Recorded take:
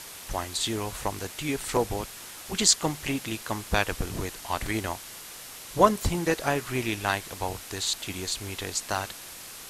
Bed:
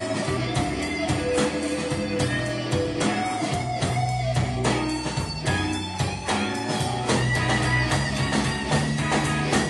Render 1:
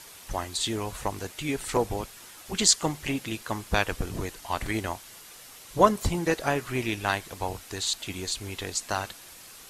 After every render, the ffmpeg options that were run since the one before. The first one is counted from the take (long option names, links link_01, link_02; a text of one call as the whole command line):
ffmpeg -i in.wav -af "afftdn=noise_reduction=6:noise_floor=-43" out.wav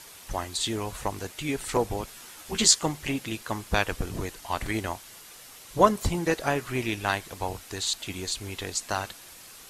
ffmpeg -i in.wav -filter_complex "[0:a]asettb=1/sr,asplit=3[link_01][link_02][link_03];[link_01]atrim=end=2.064[link_04];[link_02]atrim=start=2.06:end=2.79,asetpts=PTS-STARTPTS,afade=type=in:duration=0.004:curve=qsin,afade=type=out:start_time=0.726:duration=0.004:curve=qsin,asplit=2[link_05][link_06];[link_06]adelay=13,volume=-4dB[link_07];[link_05][link_07]amix=inputs=2:normalize=0,atrim=end_sample=32193[link_08];[link_03]atrim=start=2.786[link_09];[link_04][link_08]acrossfade=duration=0.004:curve1=hsin:curve2=qsin[link_10];[link_10][link_09]acrossfade=duration=0.004:curve1=qsin:curve2=hsin" out.wav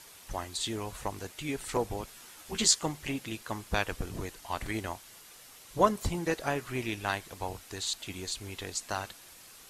ffmpeg -i in.wav -af "volume=-5dB" out.wav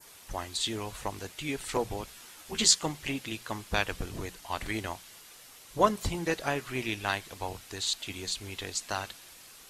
ffmpeg -i in.wav -af "bandreject=frequency=60:width_type=h:width=6,bandreject=frequency=120:width_type=h:width=6,bandreject=frequency=180:width_type=h:width=6,adynamicequalizer=threshold=0.00501:dfrequency=3300:dqfactor=0.79:tfrequency=3300:tqfactor=0.79:attack=5:release=100:ratio=0.375:range=2:mode=boostabove:tftype=bell" out.wav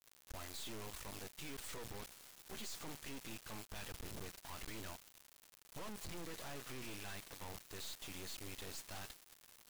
ffmpeg -i in.wav -af "aeval=exprs='(tanh(50.1*val(0)+0.55)-tanh(0.55))/50.1':channel_layout=same,acrusher=bits=5:dc=4:mix=0:aa=0.000001" out.wav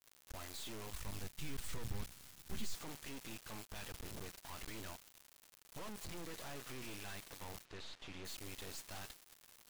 ffmpeg -i in.wav -filter_complex "[0:a]asplit=3[link_01][link_02][link_03];[link_01]afade=type=out:start_time=0.9:duration=0.02[link_04];[link_02]asubboost=boost=6:cutoff=220,afade=type=in:start_time=0.9:duration=0.02,afade=type=out:start_time=2.73:duration=0.02[link_05];[link_03]afade=type=in:start_time=2.73:duration=0.02[link_06];[link_04][link_05][link_06]amix=inputs=3:normalize=0,asplit=3[link_07][link_08][link_09];[link_07]afade=type=out:start_time=7.64:duration=0.02[link_10];[link_08]lowpass=3900,afade=type=in:start_time=7.64:duration=0.02,afade=type=out:start_time=8.24:duration=0.02[link_11];[link_09]afade=type=in:start_time=8.24:duration=0.02[link_12];[link_10][link_11][link_12]amix=inputs=3:normalize=0" out.wav